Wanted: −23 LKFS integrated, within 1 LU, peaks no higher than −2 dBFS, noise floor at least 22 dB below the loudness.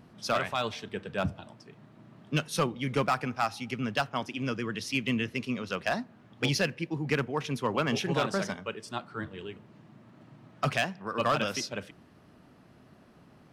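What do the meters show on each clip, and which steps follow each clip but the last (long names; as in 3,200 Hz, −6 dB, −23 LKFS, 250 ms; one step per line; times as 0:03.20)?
share of clipped samples 0.3%; peaks flattened at −19.0 dBFS; integrated loudness −31.5 LKFS; sample peak −19.0 dBFS; target loudness −23.0 LKFS
→ clipped peaks rebuilt −19 dBFS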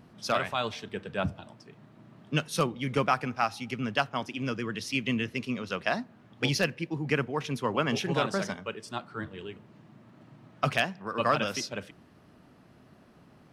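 share of clipped samples 0.0%; integrated loudness −30.5 LKFS; sample peak −10.0 dBFS; target loudness −23.0 LKFS
→ level +7.5 dB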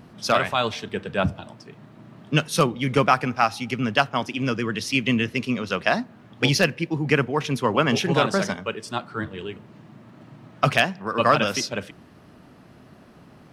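integrated loudness −23.0 LKFS; sample peak −2.5 dBFS; background noise floor −50 dBFS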